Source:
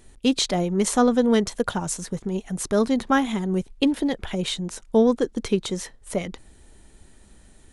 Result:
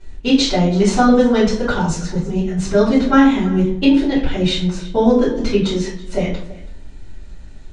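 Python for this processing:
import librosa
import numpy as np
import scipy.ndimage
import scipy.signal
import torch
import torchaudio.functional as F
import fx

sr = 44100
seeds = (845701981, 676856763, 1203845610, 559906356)

p1 = scipy.signal.sosfilt(scipy.signal.butter(4, 6300.0, 'lowpass', fs=sr, output='sos'), x)
p2 = p1 + fx.echo_single(p1, sr, ms=329, db=-19.5, dry=0)
p3 = fx.room_shoebox(p2, sr, seeds[0], volume_m3=48.0, walls='mixed', distance_m=3.0)
y = p3 * 10.0 ** (-6.5 / 20.0)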